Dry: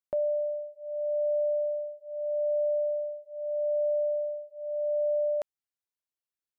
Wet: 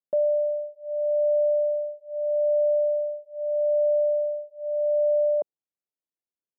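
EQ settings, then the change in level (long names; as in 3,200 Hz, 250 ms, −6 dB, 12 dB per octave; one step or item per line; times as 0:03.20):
flat-topped band-pass 320 Hz, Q 0.6
dynamic equaliser 480 Hz, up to +6 dB, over −43 dBFS, Q 0.78
+1.5 dB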